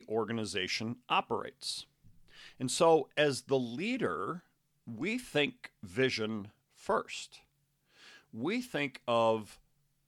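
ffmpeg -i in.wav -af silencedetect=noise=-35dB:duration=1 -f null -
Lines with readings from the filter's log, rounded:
silence_start: 7.23
silence_end: 8.37 | silence_duration: 1.14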